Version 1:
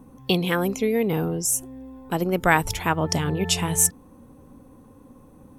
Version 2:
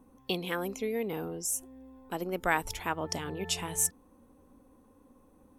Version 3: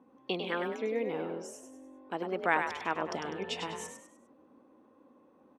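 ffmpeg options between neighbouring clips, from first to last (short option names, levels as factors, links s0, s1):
-af "equalizer=f=130:w=1.7:g=-12.5,volume=0.355"
-filter_complex "[0:a]highpass=220,lowpass=3100,asplit=2[s0][s1];[s1]asplit=4[s2][s3][s4][s5];[s2]adelay=100,afreqshift=47,volume=0.473[s6];[s3]adelay=200,afreqshift=94,volume=0.18[s7];[s4]adelay=300,afreqshift=141,volume=0.0684[s8];[s5]adelay=400,afreqshift=188,volume=0.026[s9];[s6][s7][s8][s9]amix=inputs=4:normalize=0[s10];[s0][s10]amix=inputs=2:normalize=0"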